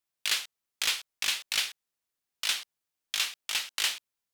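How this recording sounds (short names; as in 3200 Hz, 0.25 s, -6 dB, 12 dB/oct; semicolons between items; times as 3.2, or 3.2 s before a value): noise floor -87 dBFS; spectral tilt +2.0 dB/oct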